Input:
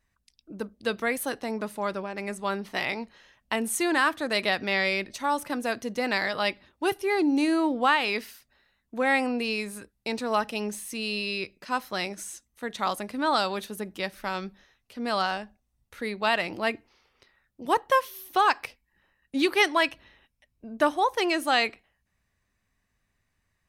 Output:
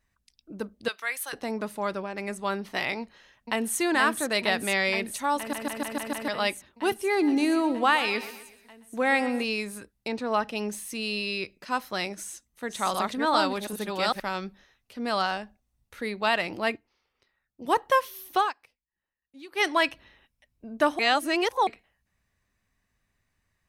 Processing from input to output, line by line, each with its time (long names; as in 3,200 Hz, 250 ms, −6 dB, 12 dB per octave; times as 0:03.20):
0:00.88–0:01.33: high-pass filter 1,200 Hz
0:03.00–0:03.79: delay throw 470 ms, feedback 80%, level −4.5 dB
0:05.38: stutter in place 0.15 s, 6 plays
0:06.98–0:09.44: repeating echo 124 ms, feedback 46%, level −14 dB
0:10.07–0:10.56: low-pass filter 2,100 Hz → 5,000 Hz 6 dB per octave
0:12.15–0:14.20: delay that plays each chunk backwards 395 ms, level −1.5 dB
0:16.74–0:17.67: expander for the loud parts, over −57 dBFS
0:18.38–0:19.67: duck −21.5 dB, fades 0.15 s
0:20.99–0:21.67: reverse